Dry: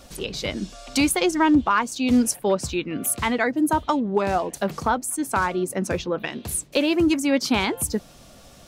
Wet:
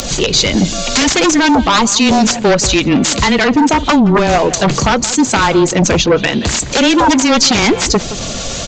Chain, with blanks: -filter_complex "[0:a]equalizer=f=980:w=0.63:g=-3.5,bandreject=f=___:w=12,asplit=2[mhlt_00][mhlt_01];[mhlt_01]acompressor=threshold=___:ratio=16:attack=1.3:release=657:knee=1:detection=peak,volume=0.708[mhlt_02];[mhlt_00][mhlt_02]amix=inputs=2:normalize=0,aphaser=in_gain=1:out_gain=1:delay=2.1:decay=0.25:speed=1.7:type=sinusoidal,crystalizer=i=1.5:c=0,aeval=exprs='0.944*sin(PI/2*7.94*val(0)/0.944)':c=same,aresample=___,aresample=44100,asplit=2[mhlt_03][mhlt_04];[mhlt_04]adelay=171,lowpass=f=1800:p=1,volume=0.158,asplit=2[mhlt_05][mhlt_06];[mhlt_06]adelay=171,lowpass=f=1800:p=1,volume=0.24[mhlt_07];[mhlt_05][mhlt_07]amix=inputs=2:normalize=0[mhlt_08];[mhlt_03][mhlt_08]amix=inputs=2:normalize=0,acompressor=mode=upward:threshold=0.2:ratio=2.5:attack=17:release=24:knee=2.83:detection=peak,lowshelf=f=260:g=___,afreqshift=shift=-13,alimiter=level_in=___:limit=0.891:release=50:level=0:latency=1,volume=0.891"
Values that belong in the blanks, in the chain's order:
5400, 0.0251, 16000, -3, 0.708